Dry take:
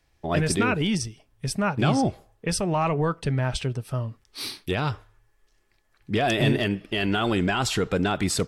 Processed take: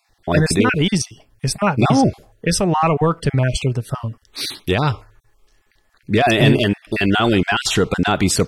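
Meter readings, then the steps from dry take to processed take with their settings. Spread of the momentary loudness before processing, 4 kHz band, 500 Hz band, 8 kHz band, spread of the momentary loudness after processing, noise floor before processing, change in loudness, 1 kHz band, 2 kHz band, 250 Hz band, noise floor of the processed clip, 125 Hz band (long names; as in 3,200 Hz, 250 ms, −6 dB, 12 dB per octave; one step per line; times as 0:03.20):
10 LU, +7.5 dB, +7.5 dB, +7.5 dB, 11 LU, −66 dBFS, +7.5 dB, +7.5 dB, +7.5 dB, +7.5 dB, −61 dBFS, +7.5 dB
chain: time-frequency cells dropped at random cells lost 22%
level +8.5 dB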